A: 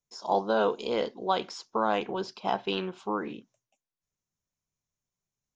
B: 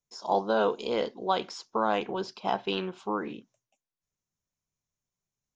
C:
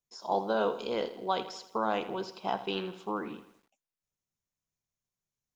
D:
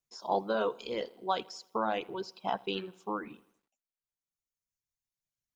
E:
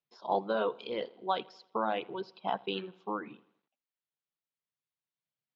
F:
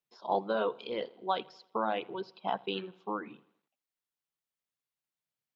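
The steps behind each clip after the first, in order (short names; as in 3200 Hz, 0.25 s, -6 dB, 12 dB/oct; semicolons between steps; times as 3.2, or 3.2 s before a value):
nothing audible
lo-fi delay 82 ms, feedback 55%, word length 9-bit, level -13.5 dB; gain -3.5 dB
reverb removal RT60 2 s
Chebyshev band-pass 130–3800 Hz, order 3
notches 50/100/150 Hz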